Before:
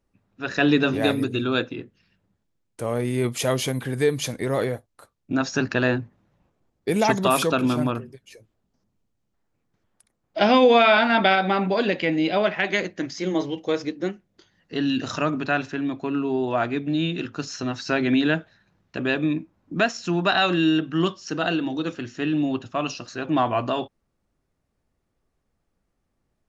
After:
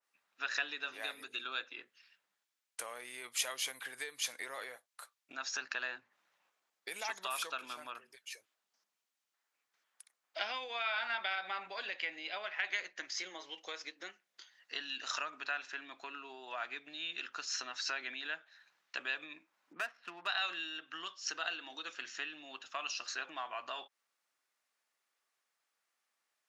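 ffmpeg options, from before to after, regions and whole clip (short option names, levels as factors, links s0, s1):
-filter_complex "[0:a]asettb=1/sr,asplit=3[s0][s1][s2];[s0]atrim=end=19.734[s3];[s1]atrim=start=19.73:end=20.27,asetpts=PTS-STARTPTS,afade=t=in:d=0.004:c=qsin,afade=t=out:st=0.536:d=0.004:c=qsin,highpass=110,lowpass=2300,adynamicsmooth=sensitivity=6.5:basefreq=1800[s4];[s2]atrim=start=20.266[s5];[s3][s4]acrossfade=d=0.004:c1=hsin:c2=qsin[s6];[s6][s5]acrossfade=d=0.004:c1=qsin:c2=hsin,acompressor=threshold=0.0282:ratio=6,highpass=1400,adynamicequalizer=threshold=0.00316:dfrequency=2300:dqfactor=0.7:tfrequency=2300:tqfactor=0.7:attack=5:release=100:ratio=0.375:range=1.5:mode=cutabove:tftype=highshelf,volume=1.33"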